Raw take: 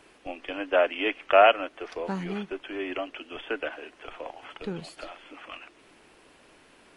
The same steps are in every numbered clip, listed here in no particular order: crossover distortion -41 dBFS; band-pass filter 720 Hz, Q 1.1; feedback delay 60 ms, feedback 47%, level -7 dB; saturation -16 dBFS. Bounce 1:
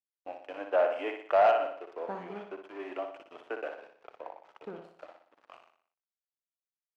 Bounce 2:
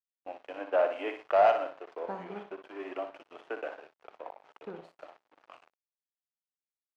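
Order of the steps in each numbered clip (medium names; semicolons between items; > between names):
crossover distortion > feedback delay > saturation > band-pass filter; saturation > feedback delay > crossover distortion > band-pass filter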